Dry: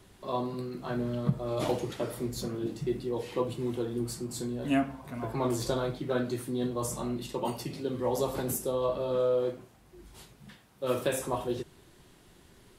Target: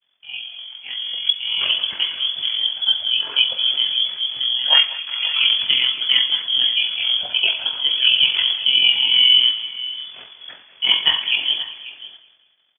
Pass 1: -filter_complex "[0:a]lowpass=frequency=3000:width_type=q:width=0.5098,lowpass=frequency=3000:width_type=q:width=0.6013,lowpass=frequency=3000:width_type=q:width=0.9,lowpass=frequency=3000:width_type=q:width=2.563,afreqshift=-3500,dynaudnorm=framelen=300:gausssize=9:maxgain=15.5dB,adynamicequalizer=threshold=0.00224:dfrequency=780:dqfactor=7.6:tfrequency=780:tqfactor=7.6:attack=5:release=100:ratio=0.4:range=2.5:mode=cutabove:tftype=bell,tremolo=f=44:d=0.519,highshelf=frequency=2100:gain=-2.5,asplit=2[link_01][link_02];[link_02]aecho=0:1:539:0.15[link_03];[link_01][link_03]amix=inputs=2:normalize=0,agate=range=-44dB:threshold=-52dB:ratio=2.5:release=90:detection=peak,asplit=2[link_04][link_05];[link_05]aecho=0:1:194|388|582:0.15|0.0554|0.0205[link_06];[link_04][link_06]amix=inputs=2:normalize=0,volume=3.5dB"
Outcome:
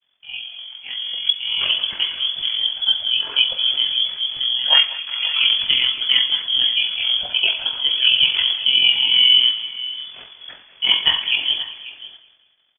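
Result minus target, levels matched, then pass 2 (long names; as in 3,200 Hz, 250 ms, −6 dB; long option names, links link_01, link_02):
125 Hz band +3.0 dB
-filter_complex "[0:a]lowpass=frequency=3000:width_type=q:width=0.5098,lowpass=frequency=3000:width_type=q:width=0.6013,lowpass=frequency=3000:width_type=q:width=0.9,lowpass=frequency=3000:width_type=q:width=2.563,afreqshift=-3500,dynaudnorm=framelen=300:gausssize=9:maxgain=15.5dB,adynamicequalizer=threshold=0.00224:dfrequency=780:dqfactor=7.6:tfrequency=780:tqfactor=7.6:attack=5:release=100:ratio=0.4:range=2.5:mode=cutabove:tftype=bell,highpass=frequency=120:poles=1,tremolo=f=44:d=0.519,highshelf=frequency=2100:gain=-2.5,asplit=2[link_01][link_02];[link_02]aecho=0:1:539:0.15[link_03];[link_01][link_03]amix=inputs=2:normalize=0,agate=range=-44dB:threshold=-52dB:ratio=2.5:release=90:detection=peak,asplit=2[link_04][link_05];[link_05]aecho=0:1:194|388|582:0.15|0.0554|0.0205[link_06];[link_04][link_06]amix=inputs=2:normalize=0,volume=3.5dB"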